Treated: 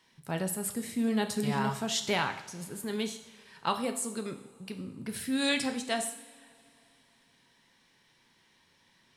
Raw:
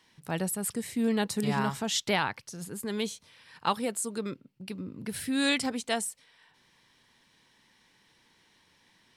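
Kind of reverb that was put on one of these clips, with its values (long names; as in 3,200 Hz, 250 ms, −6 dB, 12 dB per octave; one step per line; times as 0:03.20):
coupled-rooms reverb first 0.67 s, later 3.2 s, from −20 dB, DRR 5.5 dB
level −2.5 dB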